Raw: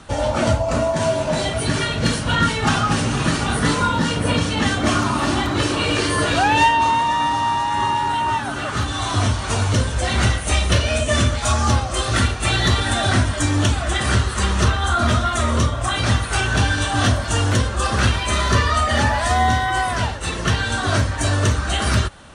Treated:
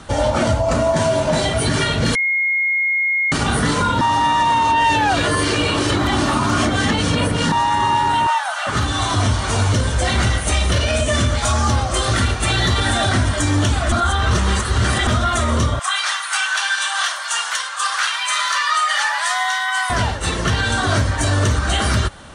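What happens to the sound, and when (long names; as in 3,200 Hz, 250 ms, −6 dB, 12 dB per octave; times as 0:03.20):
0:02.15–0:03.32: beep over 2,150 Hz −19 dBFS
0:04.01–0:07.52: reverse
0:08.27–0:08.67: Butterworth high-pass 610 Hz 72 dB per octave
0:13.92–0:15.07: reverse
0:15.79–0:19.90: high-pass filter 1,000 Hz 24 dB per octave
whole clip: brickwall limiter −12.5 dBFS; notch filter 2,600 Hz, Q 19; level +4 dB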